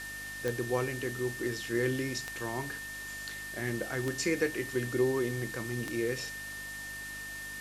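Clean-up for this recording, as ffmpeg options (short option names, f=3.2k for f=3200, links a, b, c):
-af "adeclick=t=4,bandreject=f=50.5:t=h:w=4,bandreject=f=101:t=h:w=4,bandreject=f=151.5:t=h:w=4,bandreject=f=202:t=h:w=4,bandreject=f=252.5:t=h:w=4,bandreject=f=303:t=h:w=4,bandreject=f=1.8k:w=30,afwtdn=0.005"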